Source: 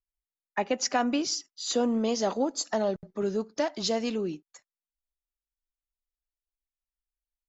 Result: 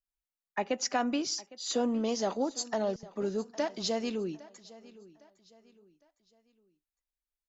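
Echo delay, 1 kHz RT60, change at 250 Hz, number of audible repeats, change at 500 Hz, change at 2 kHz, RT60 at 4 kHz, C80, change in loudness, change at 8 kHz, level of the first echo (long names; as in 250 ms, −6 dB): 808 ms, no reverb audible, −3.5 dB, 2, −3.5 dB, −3.5 dB, no reverb audible, no reverb audible, −3.5 dB, can't be measured, −20.0 dB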